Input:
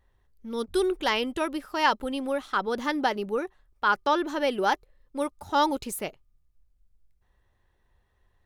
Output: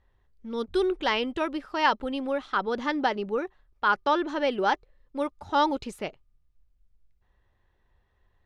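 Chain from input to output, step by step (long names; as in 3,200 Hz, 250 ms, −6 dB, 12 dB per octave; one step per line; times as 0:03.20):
low-pass filter 4,700 Hz 12 dB per octave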